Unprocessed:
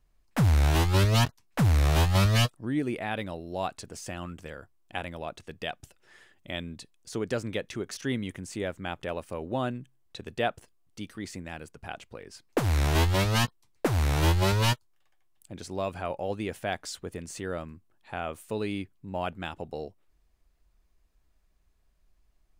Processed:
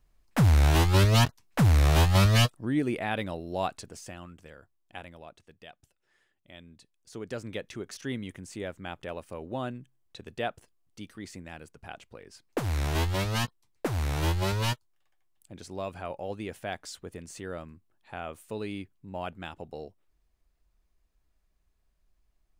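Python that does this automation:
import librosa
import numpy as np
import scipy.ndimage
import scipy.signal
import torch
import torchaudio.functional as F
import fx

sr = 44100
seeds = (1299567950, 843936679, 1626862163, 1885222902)

y = fx.gain(x, sr, db=fx.line((3.64, 1.5), (4.29, -8.0), (4.98, -8.0), (5.64, -14.5), (6.54, -14.5), (7.57, -4.0)))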